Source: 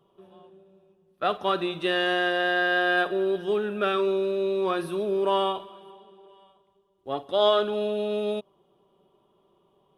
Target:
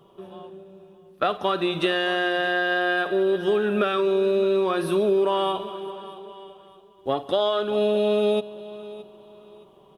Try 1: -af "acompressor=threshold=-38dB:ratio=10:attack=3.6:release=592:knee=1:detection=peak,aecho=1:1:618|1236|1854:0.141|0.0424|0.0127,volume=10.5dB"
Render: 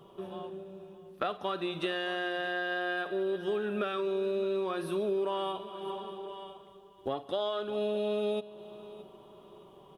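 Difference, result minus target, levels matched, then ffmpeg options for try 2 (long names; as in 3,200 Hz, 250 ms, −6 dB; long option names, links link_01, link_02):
downward compressor: peak gain reduction +10 dB
-af "acompressor=threshold=-27dB:ratio=10:attack=3.6:release=592:knee=1:detection=peak,aecho=1:1:618|1236|1854:0.141|0.0424|0.0127,volume=10.5dB"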